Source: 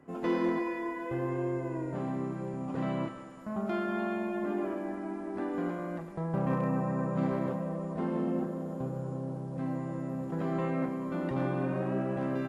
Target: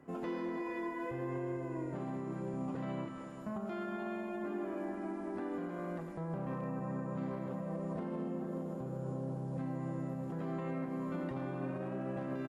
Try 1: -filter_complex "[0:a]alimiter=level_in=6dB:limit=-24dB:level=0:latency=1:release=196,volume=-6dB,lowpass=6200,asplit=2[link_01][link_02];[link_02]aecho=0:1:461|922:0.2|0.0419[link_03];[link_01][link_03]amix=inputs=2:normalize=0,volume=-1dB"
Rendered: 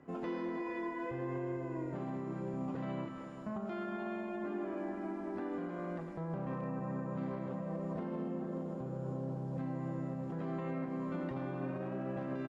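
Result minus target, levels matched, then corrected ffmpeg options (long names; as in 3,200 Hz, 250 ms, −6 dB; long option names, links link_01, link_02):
8,000 Hz band −5.0 dB
-filter_complex "[0:a]alimiter=level_in=6dB:limit=-24dB:level=0:latency=1:release=196,volume=-6dB,asplit=2[link_01][link_02];[link_02]aecho=0:1:461|922:0.2|0.0419[link_03];[link_01][link_03]amix=inputs=2:normalize=0,volume=-1dB"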